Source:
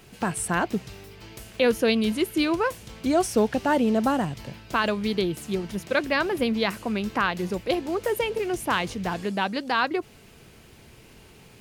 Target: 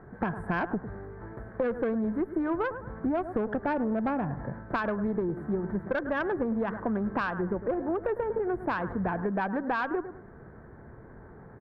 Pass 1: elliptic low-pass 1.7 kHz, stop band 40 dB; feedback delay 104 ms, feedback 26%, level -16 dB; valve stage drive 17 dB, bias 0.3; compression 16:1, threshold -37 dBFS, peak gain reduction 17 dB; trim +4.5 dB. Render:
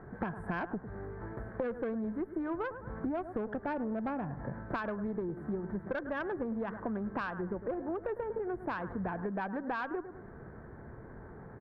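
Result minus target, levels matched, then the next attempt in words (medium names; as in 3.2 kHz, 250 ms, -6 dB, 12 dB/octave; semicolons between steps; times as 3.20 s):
compression: peak gain reduction +6.5 dB
elliptic low-pass 1.7 kHz, stop band 40 dB; feedback delay 104 ms, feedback 26%, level -16 dB; valve stage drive 17 dB, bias 0.3; compression 16:1, threshold -30 dBFS, peak gain reduction 10.5 dB; trim +4.5 dB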